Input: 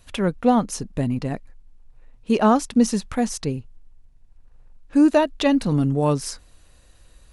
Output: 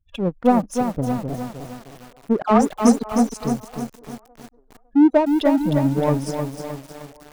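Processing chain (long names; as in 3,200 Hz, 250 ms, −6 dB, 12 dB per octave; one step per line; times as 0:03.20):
gate on every frequency bin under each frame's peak −15 dB strong
0:02.42–0:03.03: all-pass dispersion lows, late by 90 ms, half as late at 960 Hz
power curve on the samples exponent 1.4
delay with a band-pass on its return 556 ms, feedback 32%, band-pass 760 Hz, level −18 dB
feedback echo at a low word length 309 ms, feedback 55%, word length 7 bits, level −6 dB
level +4 dB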